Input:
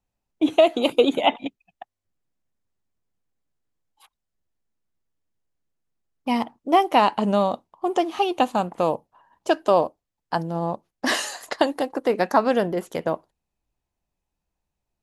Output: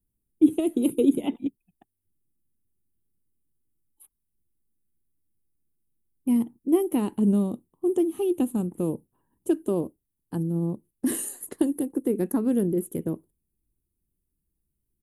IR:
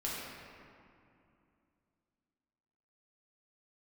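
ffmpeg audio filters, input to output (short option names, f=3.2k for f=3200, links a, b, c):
-af "firequalizer=gain_entry='entry(360,0);entry(630,-24);entry(3400,-21);entry(4900,-28);entry(9400,6)':delay=0.05:min_phase=1,volume=3dB"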